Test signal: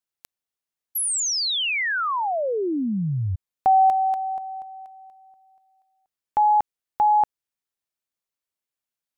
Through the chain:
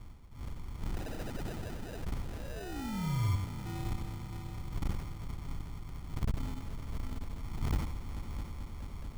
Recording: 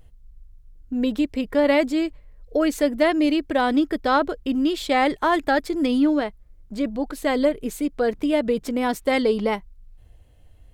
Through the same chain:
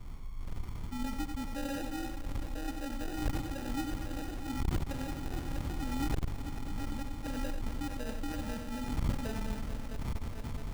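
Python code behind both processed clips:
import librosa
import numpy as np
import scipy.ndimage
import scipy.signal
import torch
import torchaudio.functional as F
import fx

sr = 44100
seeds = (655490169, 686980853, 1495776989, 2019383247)

p1 = fx.dmg_wind(x, sr, seeds[0], corner_hz=510.0, level_db=-31.0)
p2 = fx.tone_stack(p1, sr, knobs='10-0-1')
p3 = (np.mod(10.0 ** (24.5 / 20.0) * p2 + 1.0, 2.0) - 1.0) / 10.0 ** (24.5 / 20.0)
p4 = p2 + (p3 * 10.0 ** (-3.0 / 20.0))
p5 = fx.low_shelf(p4, sr, hz=130.0, db=7.0)
p6 = fx.rider(p5, sr, range_db=3, speed_s=2.0)
p7 = fx.echo_heads(p6, sr, ms=219, heads='all three', feedback_pct=73, wet_db=-15)
p8 = fx.sample_hold(p7, sr, seeds[1], rate_hz=1100.0, jitter_pct=0)
p9 = p8 + 10.0 ** (-6.5 / 20.0) * np.pad(p8, (int(93 * sr / 1000.0), 0))[:len(p8)]
p10 = fx.transformer_sat(p9, sr, knee_hz=110.0)
y = p10 * 10.0 ** (-4.0 / 20.0)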